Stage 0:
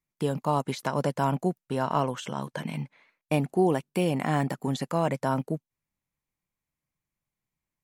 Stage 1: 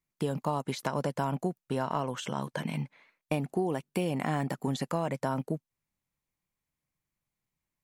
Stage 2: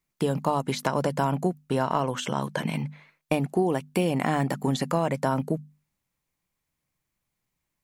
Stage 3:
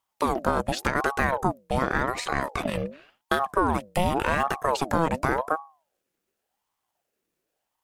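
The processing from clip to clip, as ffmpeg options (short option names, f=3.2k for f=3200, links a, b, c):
-af "acompressor=threshold=-26dB:ratio=6"
-af "bandreject=f=50:t=h:w=6,bandreject=f=100:t=h:w=6,bandreject=f=150:t=h:w=6,bandreject=f=200:t=h:w=6,bandreject=f=250:t=h:w=6,volume=6dB"
-af "aeval=exprs='if(lt(val(0),0),0.708*val(0),val(0))':c=same,aeval=exprs='val(0)*sin(2*PI*650*n/s+650*0.5/0.89*sin(2*PI*0.89*n/s))':c=same,volume=4.5dB"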